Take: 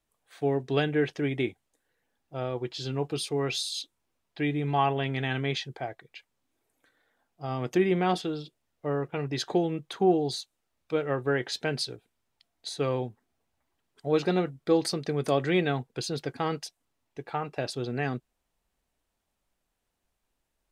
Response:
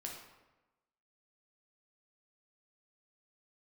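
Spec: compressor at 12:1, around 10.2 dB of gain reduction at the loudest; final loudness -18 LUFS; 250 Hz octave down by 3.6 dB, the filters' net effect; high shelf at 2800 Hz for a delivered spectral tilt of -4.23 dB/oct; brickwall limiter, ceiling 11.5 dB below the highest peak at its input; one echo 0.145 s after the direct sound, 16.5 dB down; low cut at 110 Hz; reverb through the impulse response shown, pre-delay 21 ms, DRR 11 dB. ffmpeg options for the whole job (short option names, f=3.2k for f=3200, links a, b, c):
-filter_complex "[0:a]highpass=110,equalizer=f=250:t=o:g=-5.5,highshelf=f=2.8k:g=7.5,acompressor=threshold=-30dB:ratio=12,alimiter=level_in=5dB:limit=-24dB:level=0:latency=1,volume=-5dB,aecho=1:1:145:0.15,asplit=2[a][b];[1:a]atrim=start_sample=2205,adelay=21[c];[b][c]afir=irnorm=-1:irlink=0,volume=-9dB[d];[a][d]amix=inputs=2:normalize=0,volume=21dB"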